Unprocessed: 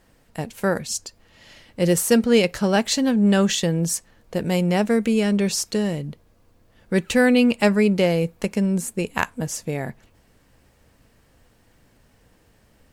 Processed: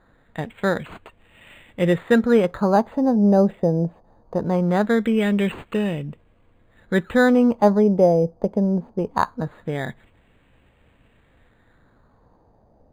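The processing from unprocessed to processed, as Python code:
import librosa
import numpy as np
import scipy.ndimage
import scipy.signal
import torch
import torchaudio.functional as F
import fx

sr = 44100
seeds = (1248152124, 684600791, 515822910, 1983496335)

y = fx.filter_lfo_lowpass(x, sr, shape='sine', hz=0.21, low_hz=700.0, high_hz=2900.0, q=2.5)
y = np.interp(np.arange(len(y)), np.arange(len(y))[::8], y[::8])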